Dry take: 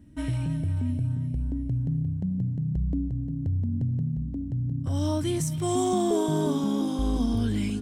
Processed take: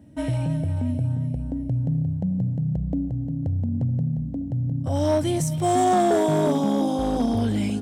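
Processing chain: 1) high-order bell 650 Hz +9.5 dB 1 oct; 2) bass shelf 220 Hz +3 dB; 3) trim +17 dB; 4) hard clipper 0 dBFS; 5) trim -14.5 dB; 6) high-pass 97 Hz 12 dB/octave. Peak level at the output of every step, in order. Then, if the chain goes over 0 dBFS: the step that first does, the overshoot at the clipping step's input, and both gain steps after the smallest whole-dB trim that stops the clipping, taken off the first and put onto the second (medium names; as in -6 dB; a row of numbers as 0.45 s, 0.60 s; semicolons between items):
-11.5 dBFS, -10.5 dBFS, +6.5 dBFS, 0.0 dBFS, -14.5 dBFS, -11.0 dBFS; step 3, 6.5 dB; step 3 +10 dB, step 5 -7.5 dB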